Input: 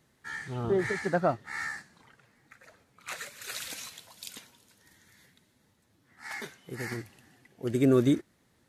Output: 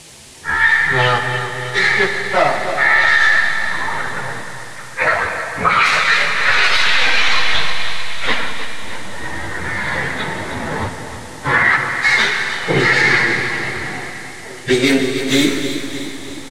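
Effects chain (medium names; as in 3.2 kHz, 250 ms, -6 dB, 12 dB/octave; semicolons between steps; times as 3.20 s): tracing distortion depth 0.28 ms; recorder AGC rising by 14 dB/s; hum notches 60/120/180/240/300/360/420/480 Hz; level-controlled noise filter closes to 620 Hz, open at -22 dBFS; graphic EQ 125/250/1000/2000/4000/8000 Hz -5/-6/+5/+8/+9/+5 dB; compression 5:1, threshold -36 dBFS, peak gain reduction 18.5 dB; trance gate "xxxx..x.xxx" 97 bpm -24 dB; plain phase-vocoder stretch 1.9×; feedback delay 309 ms, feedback 56%, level -11.5 dB; on a send at -6.5 dB: reverberation RT60 3.1 s, pre-delay 42 ms; on the sum: band noise 1.8–10 kHz -69 dBFS; loudness maximiser +29.5 dB; trim -2 dB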